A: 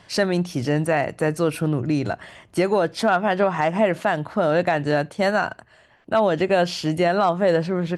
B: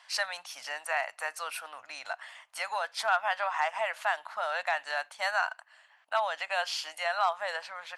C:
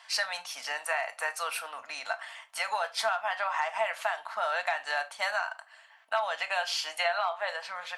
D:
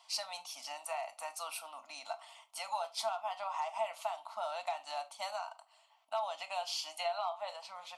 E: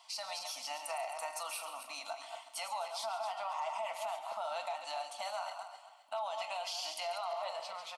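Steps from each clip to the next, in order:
inverse Chebyshev high-pass filter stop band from 400 Hz, stop band 40 dB; level −4 dB
gain on a spectral selection 0:06.99–0:07.49, 300–4,700 Hz +9 dB; downward compressor 16 to 1, threshold −29 dBFS, peak gain reduction 17 dB; convolution reverb RT60 0.25 s, pre-delay 4 ms, DRR 6.5 dB; level +3 dB
phaser with its sweep stopped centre 450 Hz, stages 6; level −4.5 dB
feedback delay that plays each chunk backwards 131 ms, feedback 51%, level −8.5 dB; brickwall limiter −32.5 dBFS, peak gain reduction 10 dB; single-tap delay 139 ms −13.5 dB; level +2.5 dB

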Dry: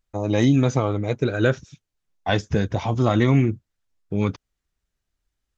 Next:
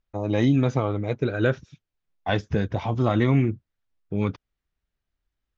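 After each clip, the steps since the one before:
low-pass filter 4,000 Hz 12 dB per octave
level −2.5 dB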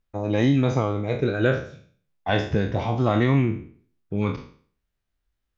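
peak hold with a decay on every bin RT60 0.49 s

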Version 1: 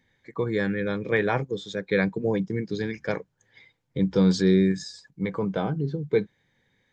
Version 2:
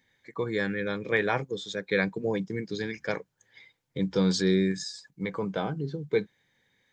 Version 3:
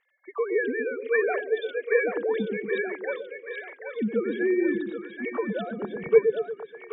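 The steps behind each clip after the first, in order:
spectral tilt +1.5 dB per octave; level −1.5 dB
three sine waves on the formant tracks; echo with a time of its own for lows and highs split 530 Hz, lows 117 ms, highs 778 ms, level −5.5 dB; level +1.5 dB

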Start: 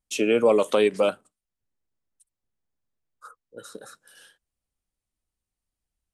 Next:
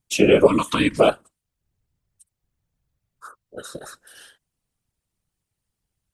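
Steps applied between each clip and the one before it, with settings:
random phases in short frames
gain on a spectral selection 0:00.47–0:00.97, 330–890 Hz −19 dB
level +6 dB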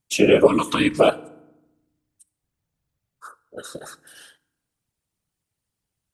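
low-shelf EQ 62 Hz −11 dB
feedback delay network reverb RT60 0.91 s, low-frequency decay 1.5×, high-frequency decay 0.6×, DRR 18.5 dB

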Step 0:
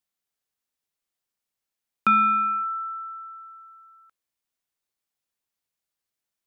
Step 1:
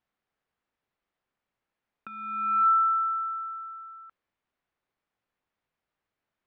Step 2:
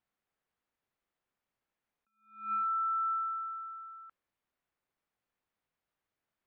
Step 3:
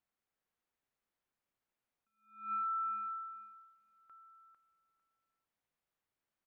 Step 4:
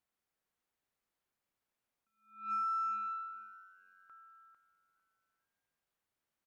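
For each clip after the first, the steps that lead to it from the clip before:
low-pass that shuts in the quiet parts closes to 2,000 Hz, open at −24 dBFS; compressor whose output falls as the input rises −28 dBFS, ratio −0.5; level +3.5 dB
brickwall limiter −25 dBFS, peak gain reduction 8.5 dB; level that may rise only so fast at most 130 dB per second; level −3.5 dB
repeating echo 450 ms, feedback 18%, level −6.5 dB; level −4 dB
harmonic generator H 4 −33 dB, 7 −41 dB, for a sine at −32 dBFS; echo with shifted repeats 432 ms, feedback 49%, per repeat +93 Hz, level −24 dB; level +1.5 dB

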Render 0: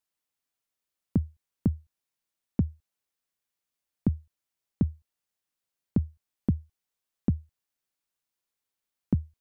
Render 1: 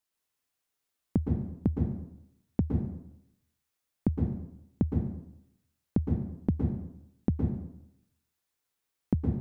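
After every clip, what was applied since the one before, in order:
downward compressor, threshold −23 dBFS, peak gain reduction 4.5 dB
convolution reverb RT60 0.80 s, pre-delay 107 ms, DRR −0.5 dB
level +1 dB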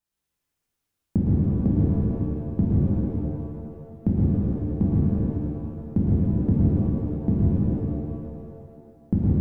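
low-shelf EQ 320 Hz +11 dB
reverb with rising layers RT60 2.2 s, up +7 semitones, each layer −8 dB, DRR −4.5 dB
level −5 dB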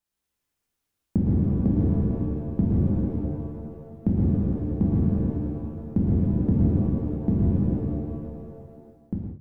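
fade-out on the ending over 0.54 s
mains-hum notches 50/100/150 Hz

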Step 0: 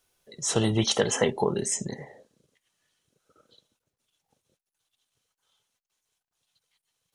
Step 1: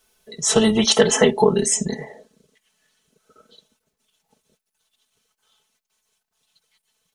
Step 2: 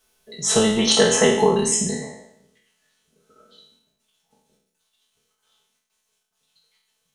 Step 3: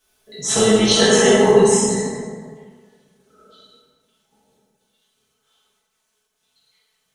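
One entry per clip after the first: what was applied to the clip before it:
comb filter 4.6 ms, depth 83%; level +6 dB
peak hold with a decay on every bin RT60 0.72 s; level −3.5 dB
dense smooth reverb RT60 1.7 s, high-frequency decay 0.5×, DRR −5.5 dB; level −3 dB

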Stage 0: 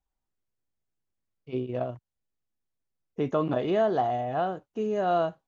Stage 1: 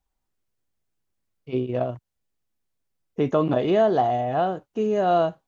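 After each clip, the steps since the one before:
dynamic equaliser 1,400 Hz, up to −3 dB, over −37 dBFS, Q 1.4
level +5.5 dB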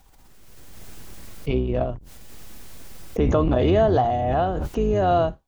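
sub-octave generator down 2 octaves, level +1 dB
background raised ahead of every attack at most 22 dB per second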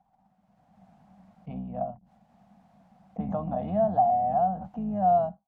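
pair of resonant band-passes 380 Hz, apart 1.9 octaves
level +1.5 dB

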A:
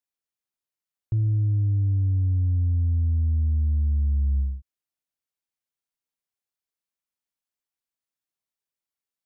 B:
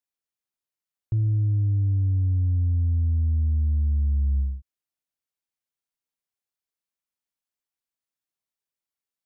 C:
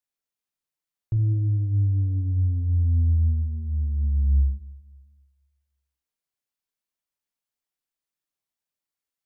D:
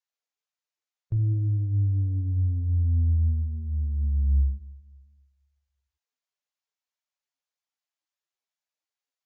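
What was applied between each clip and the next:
no processing that can be heard
rectangular room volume 240 cubic metres, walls mixed, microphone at 0.39 metres
level −2 dB; Ogg Vorbis 64 kbit/s 16,000 Hz

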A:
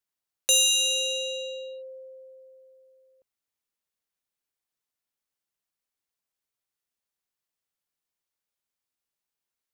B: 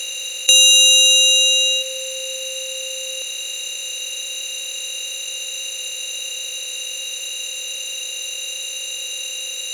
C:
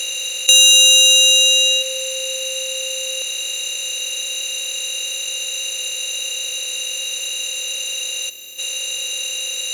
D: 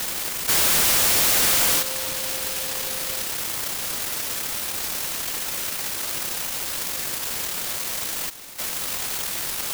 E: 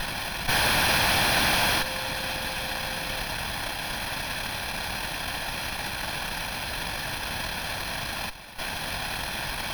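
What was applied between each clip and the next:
compressor on every frequency bin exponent 0.2; meter weighting curve D
gain on a spectral selection 0:08.30–0:08.58, 430–11,000 Hz −13 dB; in parallel at −4 dB: soft clipping −16 dBFS, distortion −8 dB; on the sum: level −1 dB
brickwall limiter −10.5 dBFS, peak gain reduction 8.5 dB; short delay modulated by noise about 3,900 Hz, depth 0.34 ms; level −3 dB
lower of the sound and its delayed copy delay 1.2 ms; moving average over 6 samples; level +5.5 dB

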